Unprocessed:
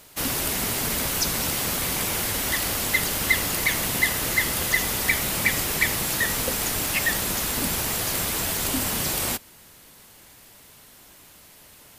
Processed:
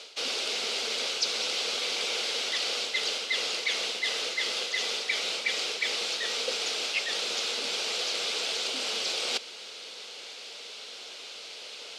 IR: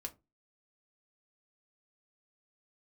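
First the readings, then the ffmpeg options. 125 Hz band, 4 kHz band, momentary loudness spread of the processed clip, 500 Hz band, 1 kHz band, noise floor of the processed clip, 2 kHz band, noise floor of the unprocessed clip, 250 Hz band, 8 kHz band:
under -30 dB, +2.0 dB, 13 LU, -3.5 dB, -8.0 dB, -43 dBFS, -6.5 dB, -50 dBFS, -17.0 dB, -10.0 dB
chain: -af "areverse,acompressor=threshold=0.0178:ratio=8,areverse,crystalizer=i=8:c=0,highpass=f=290:w=0.5412,highpass=f=290:w=1.3066,equalizer=f=300:t=q:w=4:g=-8,equalizer=f=470:t=q:w=4:g=9,equalizer=f=1000:t=q:w=4:g=-7,equalizer=f=1800:t=q:w=4:g=-10,lowpass=f=4400:w=0.5412,lowpass=f=4400:w=1.3066,volume=1.5"

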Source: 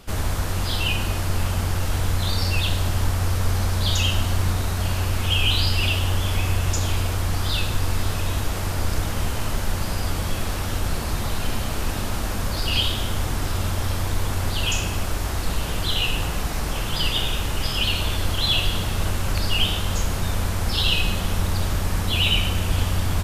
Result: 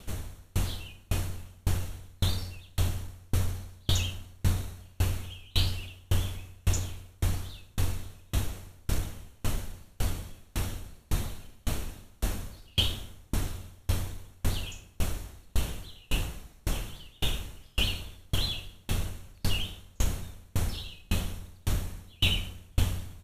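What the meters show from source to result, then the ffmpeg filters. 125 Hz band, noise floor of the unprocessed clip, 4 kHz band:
-9.0 dB, -26 dBFS, -10.5 dB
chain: -af "bandreject=f=4900:w=6.3,acontrast=75,equalizer=f=1100:t=o:w=2.1:g=-6.5,aeval=exprs='val(0)*pow(10,-37*if(lt(mod(1.8*n/s,1),2*abs(1.8)/1000),1-mod(1.8*n/s,1)/(2*abs(1.8)/1000),(mod(1.8*n/s,1)-2*abs(1.8)/1000)/(1-2*abs(1.8)/1000))/20)':c=same,volume=0.501"

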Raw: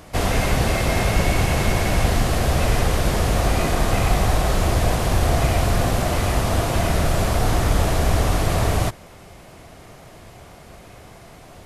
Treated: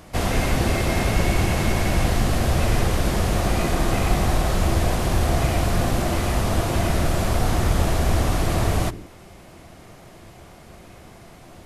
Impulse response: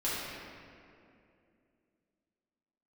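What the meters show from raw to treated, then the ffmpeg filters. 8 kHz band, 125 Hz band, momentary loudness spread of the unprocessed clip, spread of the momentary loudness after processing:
-2.0 dB, -1.5 dB, 1 LU, 1 LU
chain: -filter_complex "[0:a]asplit=2[s0][s1];[s1]lowshelf=f=490:t=q:w=3:g=11.5[s2];[1:a]atrim=start_sample=2205,afade=t=out:st=0.24:d=0.01,atrim=end_sample=11025[s3];[s2][s3]afir=irnorm=-1:irlink=0,volume=0.0501[s4];[s0][s4]amix=inputs=2:normalize=0,volume=0.75"

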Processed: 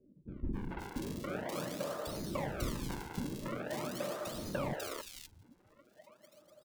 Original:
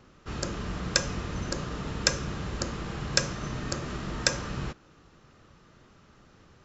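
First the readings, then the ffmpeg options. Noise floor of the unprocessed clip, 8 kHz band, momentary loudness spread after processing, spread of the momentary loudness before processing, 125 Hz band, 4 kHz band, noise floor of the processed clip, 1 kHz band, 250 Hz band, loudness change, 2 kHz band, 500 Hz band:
-58 dBFS, no reading, 6 LU, 8 LU, -9.0 dB, -15.5 dB, -68 dBFS, -4.5 dB, -4.0 dB, -8.5 dB, -12.0 dB, -2.0 dB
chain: -filter_complex "[0:a]highpass=290,equalizer=f=600:t=o:w=0.3:g=11,bandreject=f=410:w=12,afftdn=nr=15:nf=-47,areverse,acompressor=threshold=0.01:ratio=8,areverse,lowpass=f=3500:w=0.5412,lowpass=f=3500:w=1.3066,tiltshelf=f=820:g=4.5,acrusher=samples=41:mix=1:aa=0.000001:lfo=1:lforange=65.6:lforate=0.44,acrossover=split=390|2700[s0][s1][s2];[s1]adelay=280[s3];[s2]adelay=530[s4];[s0][s3][s4]amix=inputs=3:normalize=0,volume=1.88"

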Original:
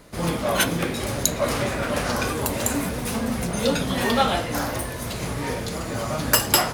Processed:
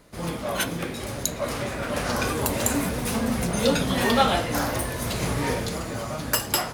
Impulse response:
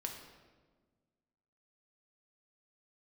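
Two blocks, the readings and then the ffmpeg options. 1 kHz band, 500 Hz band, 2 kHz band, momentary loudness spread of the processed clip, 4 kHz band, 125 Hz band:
-1.5 dB, -1.5 dB, -2.0 dB, 9 LU, -2.5 dB, -1.0 dB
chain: -af "dynaudnorm=f=110:g=13:m=2.82,volume=0.531"

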